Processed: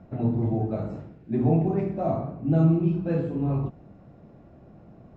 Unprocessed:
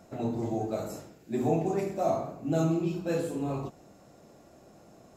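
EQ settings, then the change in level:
high-frequency loss of the air 110 metres
bass and treble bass +12 dB, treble −13 dB
high-shelf EQ 8,600 Hz −11.5 dB
0.0 dB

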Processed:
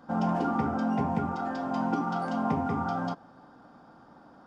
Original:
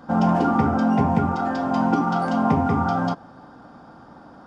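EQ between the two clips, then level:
parametric band 73 Hz −5 dB 1.5 octaves
−8.0 dB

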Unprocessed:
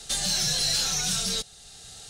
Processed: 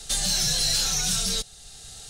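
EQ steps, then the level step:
low-shelf EQ 61 Hz +11 dB
high-shelf EQ 7,600 Hz +5 dB
0.0 dB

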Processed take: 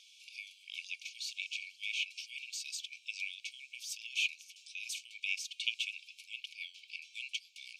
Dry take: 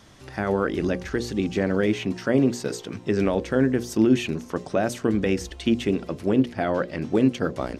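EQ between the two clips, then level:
linear-phase brick-wall high-pass 2,200 Hz
high-shelf EQ 5,400 Hz −12 dB
+3.0 dB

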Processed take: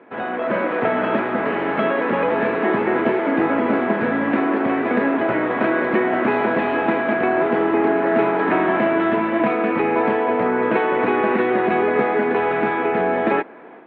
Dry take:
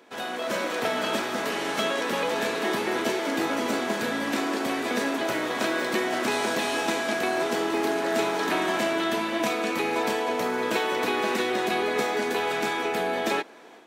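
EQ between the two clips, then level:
low-pass filter 2,300 Hz 24 dB per octave
high-frequency loss of the air 170 metres
low-shelf EQ 330 Hz +3.5 dB
+7.5 dB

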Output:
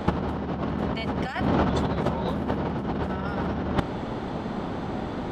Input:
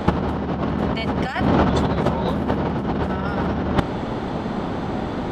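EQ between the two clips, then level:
no EQ move
−5.5 dB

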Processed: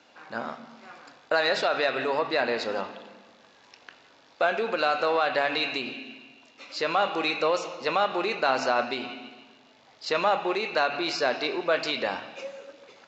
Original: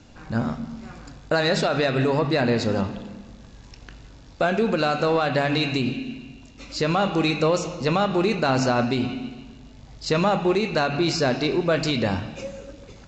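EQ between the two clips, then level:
band-pass filter 560–4,400 Hz
0.0 dB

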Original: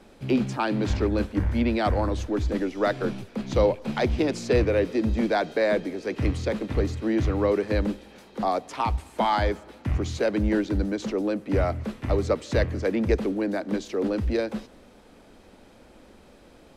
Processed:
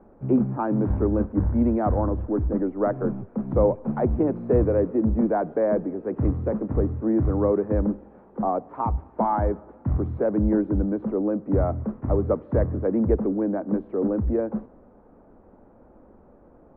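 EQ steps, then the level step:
low-pass filter 1,200 Hz 24 dB per octave
dynamic equaliser 170 Hz, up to +4 dB, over −37 dBFS, Q 0.71
0.0 dB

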